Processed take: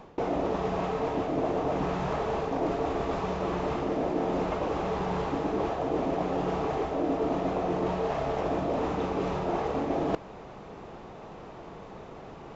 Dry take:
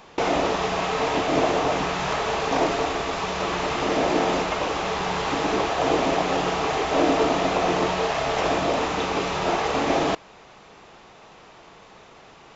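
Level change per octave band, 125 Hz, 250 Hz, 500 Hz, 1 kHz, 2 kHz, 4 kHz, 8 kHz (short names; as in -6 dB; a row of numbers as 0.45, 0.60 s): -1.5 dB, -3.5 dB, -5.0 dB, -8.0 dB, -13.5 dB, -17.0 dB, n/a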